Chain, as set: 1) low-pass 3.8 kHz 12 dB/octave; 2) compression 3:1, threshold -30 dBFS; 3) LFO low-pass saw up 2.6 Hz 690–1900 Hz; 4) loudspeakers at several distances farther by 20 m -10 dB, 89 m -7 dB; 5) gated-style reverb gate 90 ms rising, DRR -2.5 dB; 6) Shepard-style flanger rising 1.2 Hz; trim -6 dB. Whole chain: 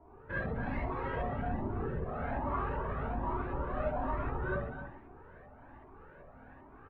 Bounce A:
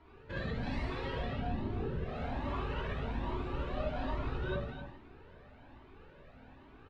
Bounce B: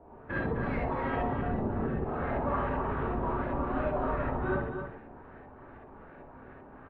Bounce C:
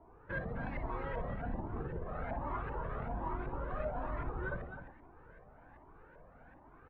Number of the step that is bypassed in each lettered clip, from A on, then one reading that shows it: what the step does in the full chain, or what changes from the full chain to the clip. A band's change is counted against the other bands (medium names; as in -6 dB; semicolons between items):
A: 3, 1 kHz band -3.5 dB; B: 6, 250 Hz band +2.5 dB; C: 5, loudness change -4.0 LU